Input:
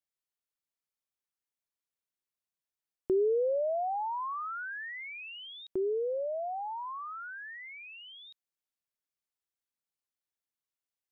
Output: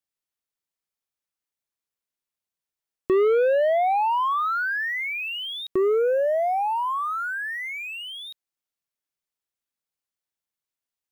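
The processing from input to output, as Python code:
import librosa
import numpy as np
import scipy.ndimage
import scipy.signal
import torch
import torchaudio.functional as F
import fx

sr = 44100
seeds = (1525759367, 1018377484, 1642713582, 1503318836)

y = fx.leveller(x, sr, passes=2)
y = F.gain(torch.from_numpy(y), 6.0).numpy()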